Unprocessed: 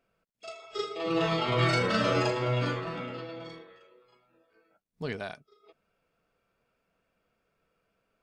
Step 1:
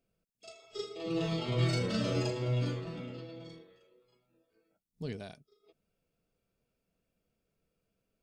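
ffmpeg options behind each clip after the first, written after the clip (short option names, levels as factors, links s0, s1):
-af "equalizer=f=1300:t=o:w=2.5:g=-15"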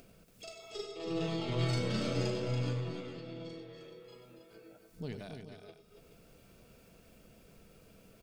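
-af "acompressor=mode=upward:threshold=0.0141:ratio=2.5,aeval=exprs='0.141*(cos(1*acos(clip(val(0)/0.141,-1,1)))-cos(1*PI/2))+0.00501*(cos(8*acos(clip(val(0)/0.141,-1,1)))-cos(8*PI/2))':c=same,aecho=1:1:95|283|425:0.316|0.422|0.266,volume=0.708"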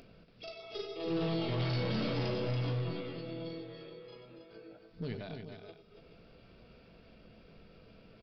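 -filter_complex "[0:a]aresample=11025,asoftclip=type=hard:threshold=0.0237,aresample=44100,asplit=2[s0][s1];[s1]adelay=18,volume=0.282[s2];[s0][s2]amix=inputs=2:normalize=0,volume=1.26"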